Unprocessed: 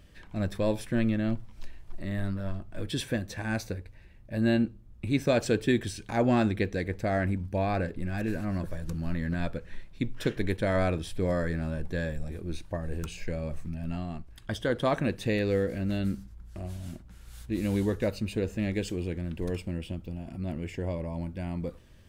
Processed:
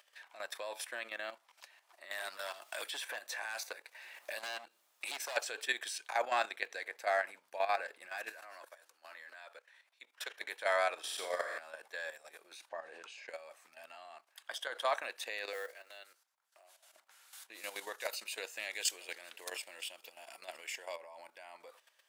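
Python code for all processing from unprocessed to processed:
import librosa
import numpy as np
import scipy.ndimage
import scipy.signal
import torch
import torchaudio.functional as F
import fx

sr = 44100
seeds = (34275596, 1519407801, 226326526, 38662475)

y = fx.chain(x, sr, fx.high_shelf(hz=3200.0, db=3.5),
    fx.clip_hard(threshold_db=-25.0),
    fx.band_squash(depth_pct=100), at=(2.11, 5.37))
y = fx.chain(y, sr, fx.highpass(hz=240.0, slope=24),
    fx.low_shelf(hz=390.0, db=-4.0),
    fx.level_steps(step_db=14), at=(8.32, 10.41))
y = fx.chain(y, sr, fx.small_body(hz=(730.0, 1100.0, 2900.0), ring_ms=80, db=7),
    fx.room_flutter(wall_m=7.7, rt60_s=1.1), at=(10.98, 11.58))
y = fx.chain(y, sr, fx.lowpass(hz=5100.0, slope=12),
    fx.low_shelf(hz=360.0, db=9.5), at=(12.69, 13.29))
y = fx.chain(y, sr, fx.highpass(hz=360.0, slope=24),
    fx.quant_float(bits=4),
    fx.upward_expand(threshold_db=-48.0, expansion=1.5), at=(15.53, 16.95))
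y = fx.chain(y, sr, fx.high_shelf(hz=2800.0, db=9.5),
    fx.echo_single(ms=962, db=-22.5), at=(17.98, 20.96))
y = scipy.signal.sosfilt(scipy.signal.butter(4, 710.0, 'highpass', fs=sr, output='sos'), y)
y = fx.high_shelf(y, sr, hz=8200.0, db=3.0)
y = fx.level_steps(y, sr, step_db=11)
y = F.gain(torch.from_numpy(y), 3.0).numpy()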